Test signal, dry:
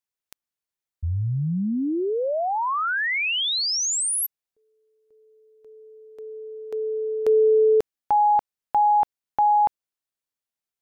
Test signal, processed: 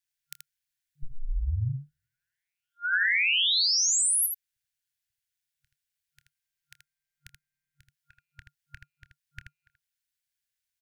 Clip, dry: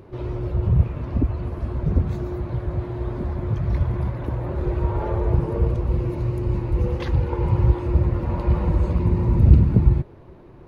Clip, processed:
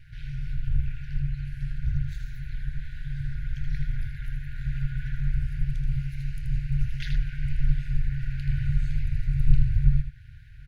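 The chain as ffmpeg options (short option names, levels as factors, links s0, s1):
-filter_complex "[0:a]aeval=exprs='val(0)*sin(2*PI*90*n/s)':c=same,asplit=2[s0][s1];[s1]acompressor=threshold=0.0126:ratio=6:attack=11:release=242:detection=peak,volume=1[s2];[s0][s2]amix=inputs=2:normalize=0,afftfilt=real='re*(1-between(b*sr/4096,140,1400))':imag='im*(1-between(b*sr/4096,140,1400))':win_size=4096:overlap=0.75,aecho=1:1:27|80:0.168|0.501"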